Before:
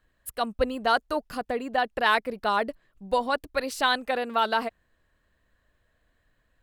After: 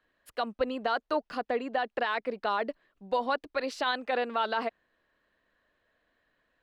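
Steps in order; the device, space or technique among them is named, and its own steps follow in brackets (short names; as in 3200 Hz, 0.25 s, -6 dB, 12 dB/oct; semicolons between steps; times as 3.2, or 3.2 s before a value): DJ mixer with the lows and highs turned down (three-band isolator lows -16 dB, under 210 Hz, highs -21 dB, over 5500 Hz; limiter -18.5 dBFS, peak gain reduction 10.5 dB)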